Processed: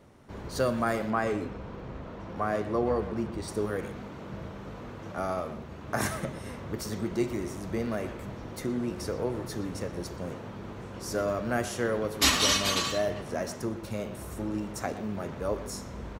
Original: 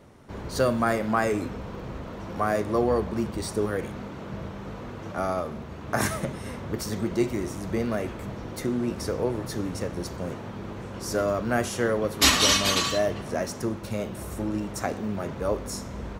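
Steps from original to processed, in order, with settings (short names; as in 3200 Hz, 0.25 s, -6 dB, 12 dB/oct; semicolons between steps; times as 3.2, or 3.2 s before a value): 1.1–3.48 LPF 3600 Hz 6 dB/oct; speakerphone echo 0.12 s, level -10 dB; gain -4 dB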